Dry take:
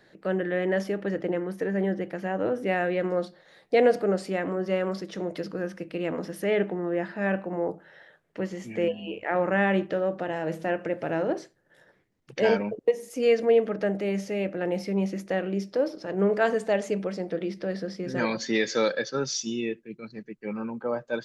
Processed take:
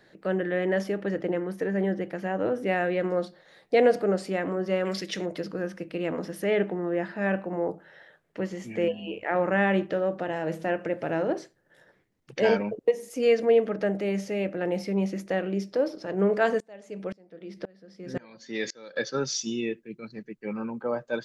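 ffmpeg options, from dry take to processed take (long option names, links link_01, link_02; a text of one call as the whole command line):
ffmpeg -i in.wav -filter_complex "[0:a]asettb=1/sr,asplit=3[link_01][link_02][link_03];[link_01]atrim=end=4.854[link_04];[link_02]atrim=start=4.85:end=5.26,asetpts=PTS-STARTPTS,afade=type=in:duration=0.004:curve=qsin,afade=type=out:start_time=0.406:duration=0.004:curve=qsin,highshelf=frequency=1600:width_type=q:width=1.5:gain=9[link_05];[link_03]atrim=start=5.256[link_06];[link_04][link_05]acrossfade=duration=0.004:curve1=hsin:curve2=qsin[link_07];[link_07][link_06]acrossfade=duration=0.004:curve1=qsin:curve2=hsin,asettb=1/sr,asplit=3[link_08][link_09][link_10];[link_08]atrim=end=16.604[link_11];[link_09]atrim=start=16.6:end=18.96,asetpts=PTS-STARTPTS,afade=type=in:duration=0.004:curve=qsin,afade=type=out:start_time=2.356:duration=0.004:curve=qsin,aeval=exprs='val(0)*pow(10,-29*if(lt(mod(-1.9*n/s,1),2*abs(-1.9)/1000),1-mod(-1.9*n/s,1)/(2*abs(-1.9)/1000),(mod(-1.9*n/s,1)-2*abs(-1.9)/1000)/(1-2*abs(-1.9)/1000))/20)':channel_layout=same[link_12];[link_10]atrim=start=18.956[link_13];[link_11][link_12]acrossfade=duration=0.004:curve1=hsin:curve2=qsin[link_14];[link_14][link_13]acrossfade=duration=0.004:curve1=qsin:curve2=hsin" out.wav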